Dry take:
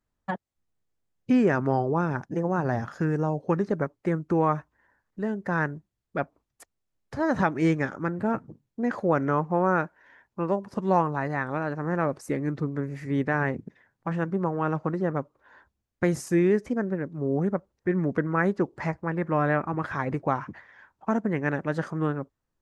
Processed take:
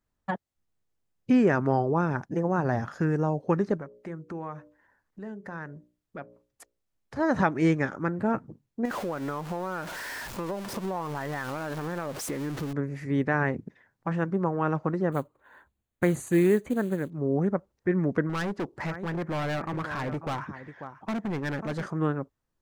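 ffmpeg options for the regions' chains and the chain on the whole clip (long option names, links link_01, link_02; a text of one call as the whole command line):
ffmpeg -i in.wav -filter_complex "[0:a]asettb=1/sr,asplit=3[link_01][link_02][link_03];[link_01]atrim=end=3.774[link_04];[link_02]atrim=start=3.77:end=7.16,asetpts=PTS-STARTPTS,afade=type=in:duration=0.004:curve=qsin,afade=type=out:start_time=3.386:duration=0.004:curve=qsin,bandreject=frequency=60:width_type=h:width=6,bandreject=frequency=120:width_type=h:width=6,bandreject=frequency=180:width_type=h:width=6,bandreject=frequency=240:width_type=h:width=6,bandreject=frequency=300:width_type=h:width=6,bandreject=frequency=360:width_type=h:width=6,bandreject=frequency=420:width_type=h:width=6,bandreject=frequency=480:width_type=h:width=6,bandreject=frequency=540:width_type=h:width=6,bandreject=frequency=600:width_type=h:width=6,acompressor=threshold=-43dB:ratio=2:attack=3.2:release=140:knee=1:detection=peak[link_05];[link_03]atrim=start=7.156[link_06];[link_04][link_05]acrossfade=duration=0.004:curve1=hsin:curve2=qsin[link_07];[link_07][link_06]acrossfade=duration=0.004:curve1=qsin:curve2=hsin,asettb=1/sr,asplit=3[link_08][link_09][link_10];[link_08]atrim=end=8.854[link_11];[link_09]atrim=start=8.85:end=12.73,asetpts=PTS-STARTPTS,afade=type=in:duration=0.004:curve=qsin,afade=type=out:start_time=3.876:duration=0.004:curve=qsin,aeval=exprs='val(0)+0.5*0.0266*sgn(val(0))':channel_layout=same,equalizer=frequency=95:width=0.31:gain=-4,acompressor=threshold=-28dB:ratio=5:attack=3.2:release=140:knee=1:detection=peak[link_12];[link_10]atrim=start=12.726[link_13];[link_11][link_12]acrossfade=duration=0.004:curve1=hsin:curve2=qsin[link_14];[link_14][link_13]acrossfade=duration=0.004:curve1=qsin:curve2=hsin,asettb=1/sr,asplit=3[link_15][link_16][link_17];[link_15]atrim=end=15.124[link_18];[link_16]atrim=start=15.12:end=17.1,asetpts=PTS-STARTPTS,afade=type=in:duration=0.004:curve=qsin,afade=type=out:start_time=1.976:duration=0.004:curve=qsin,acrusher=bits=6:mode=log:mix=0:aa=0.000001,asuperstop=centerf=5300:order=4:qfactor=2.7,bandreject=frequency=50:width_type=h:width=6,bandreject=frequency=100:width_type=h:width=6[link_19];[link_17]atrim=start=17.096[link_20];[link_18][link_19]acrossfade=duration=0.004:curve1=hsin:curve2=qsin[link_21];[link_21][link_20]acrossfade=duration=0.004:curve1=qsin:curve2=hsin,asettb=1/sr,asplit=3[link_22][link_23][link_24];[link_22]atrim=end=18.294[link_25];[link_23]atrim=start=18.29:end=21.86,asetpts=PTS-STARTPTS,afade=type=in:duration=0.004:curve=qsin,afade=type=out:start_time=3.566:duration=0.004:curve=qsin,aecho=1:1:541:0.168,atrim=end_sample=157437,asoftclip=type=hard:threshold=-27.5dB[link_26];[link_24]atrim=start=21.856[link_27];[link_25][link_26]acrossfade=duration=0.004:curve1=hsin:curve2=qsin[link_28];[link_28][link_27]acrossfade=duration=0.004:curve1=qsin:curve2=hsin" out.wav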